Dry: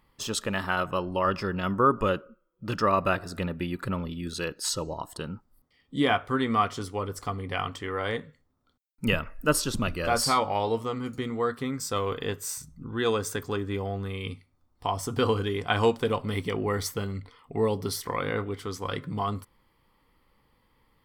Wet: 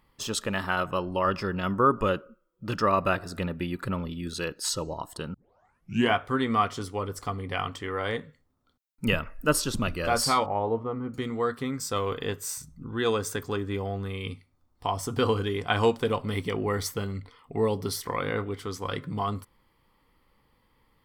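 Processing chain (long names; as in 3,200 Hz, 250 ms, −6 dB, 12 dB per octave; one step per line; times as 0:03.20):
0:05.34: tape start 0.80 s
0:10.46–0:11.14: low-pass filter 1,200 Hz 12 dB per octave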